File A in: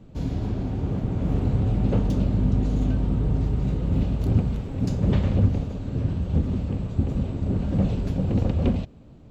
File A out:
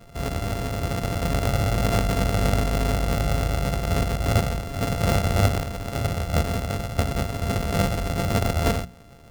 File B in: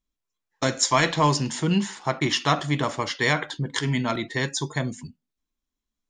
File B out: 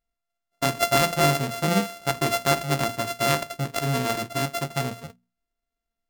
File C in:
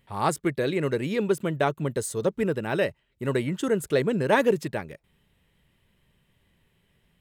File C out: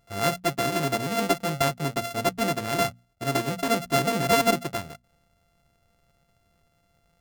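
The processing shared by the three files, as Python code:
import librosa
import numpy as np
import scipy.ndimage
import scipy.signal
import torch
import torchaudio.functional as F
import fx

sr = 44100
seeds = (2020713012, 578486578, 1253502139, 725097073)

y = np.r_[np.sort(x[:len(x) // 64 * 64].reshape(-1, 64), axis=1).ravel(), x[len(x) // 64 * 64:]]
y = fx.hum_notches(y, sr, base_hz=60, count=4)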